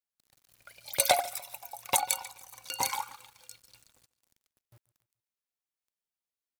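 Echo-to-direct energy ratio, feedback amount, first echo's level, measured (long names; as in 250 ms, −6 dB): −19.5 dB, 45%, −20.5 dB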